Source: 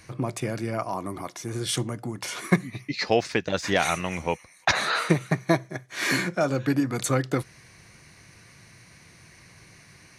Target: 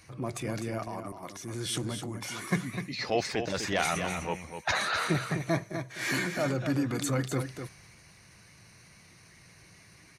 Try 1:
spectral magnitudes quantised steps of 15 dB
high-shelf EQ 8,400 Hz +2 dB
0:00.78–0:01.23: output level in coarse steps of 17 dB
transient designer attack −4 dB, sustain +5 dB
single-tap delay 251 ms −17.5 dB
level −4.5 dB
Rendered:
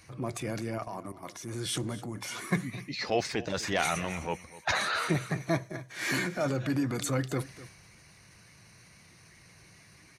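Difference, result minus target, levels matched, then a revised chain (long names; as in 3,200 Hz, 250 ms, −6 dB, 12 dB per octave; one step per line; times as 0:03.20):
echo-to-direct −9.5 dB
spectral magnitudes quantised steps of 15 dB
high-shelf EQ 8,400 Hz +2 dB
0:00.78–0:01.23: output level in coarse steps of 17 dB
transient designer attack −4 dB, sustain +5 dB
single-tap delay 251 ms −8 dB
level −4.5 dB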